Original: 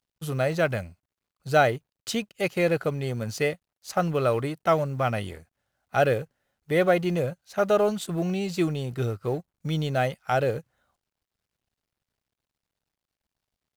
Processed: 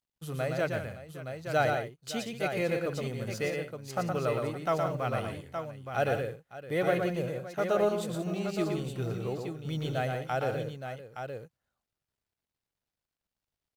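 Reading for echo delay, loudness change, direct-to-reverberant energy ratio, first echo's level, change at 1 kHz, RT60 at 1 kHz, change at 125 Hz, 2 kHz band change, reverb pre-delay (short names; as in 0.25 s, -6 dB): 0.117 s, -6.0 dB, none, -4.5 dB, -5.5 dB, none, -5.5 dB, -5.5 dB, none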